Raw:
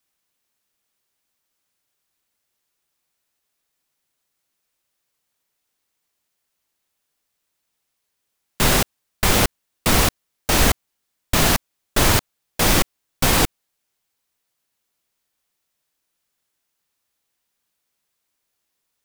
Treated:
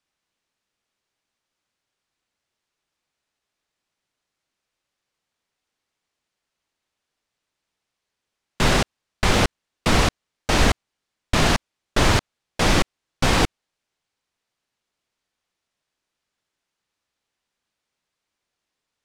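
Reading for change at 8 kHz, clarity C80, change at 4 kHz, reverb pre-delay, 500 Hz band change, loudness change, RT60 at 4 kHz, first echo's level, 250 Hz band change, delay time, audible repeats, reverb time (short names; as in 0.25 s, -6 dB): -7.0 dB, none, -2.0 dB, none, 0.0 dB, -2.5 dB, none, none, 0.0 dB, none, none, none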